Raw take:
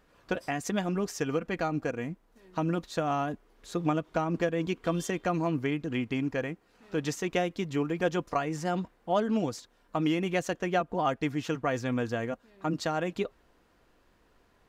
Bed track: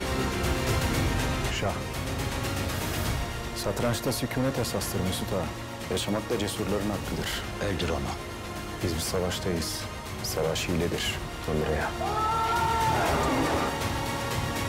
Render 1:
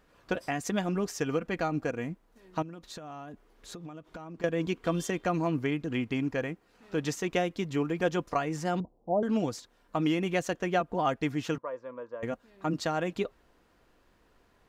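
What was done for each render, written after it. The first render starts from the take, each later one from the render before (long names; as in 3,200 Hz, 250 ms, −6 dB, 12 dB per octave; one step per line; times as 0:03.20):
0:02.62–0:04.44: downward compressor 12 to 1, threshold −39 dBFS
0:08.80–0:09.23: Butterworth low-pass 820 Hz
0:11.58–0:12.23: pair of resonant band-passes 750 Hz, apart 0.84 octaves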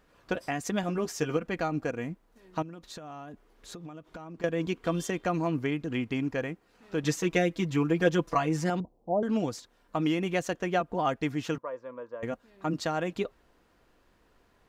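0:00.82–0:01.37: double-tracking delay 13 ms −6 dB
0:07.03–0:08.70: comb filter 6.1 ms, depth 96%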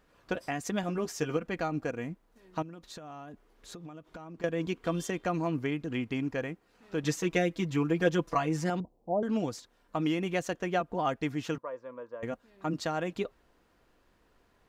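level −2 dB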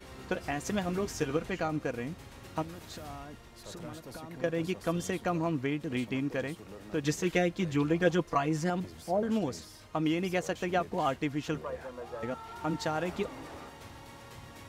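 mix in bed track −19 dB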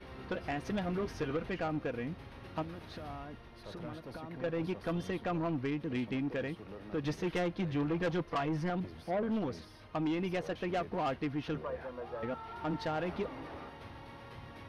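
moving average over 6 samples
soft clipping −28 dBFS, distortion −10 dB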